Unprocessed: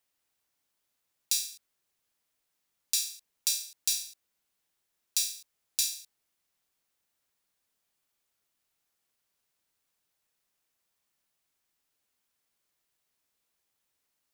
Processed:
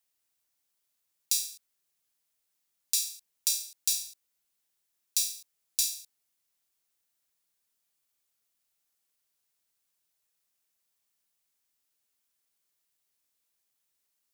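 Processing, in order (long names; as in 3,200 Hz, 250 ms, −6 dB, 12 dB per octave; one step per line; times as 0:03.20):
high-shelf EQ 3,800 Hz +8 dB
level −5.5 dB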